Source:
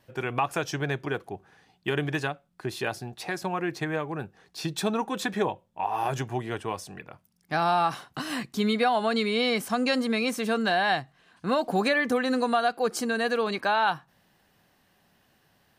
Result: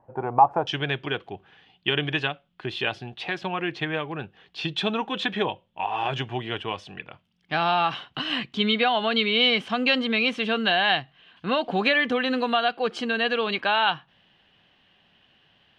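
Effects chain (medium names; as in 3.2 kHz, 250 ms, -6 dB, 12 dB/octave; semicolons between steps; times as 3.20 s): resonant low-pass 860 Hz, resonance Q 4.9, from 0.67 s 3.1 kHz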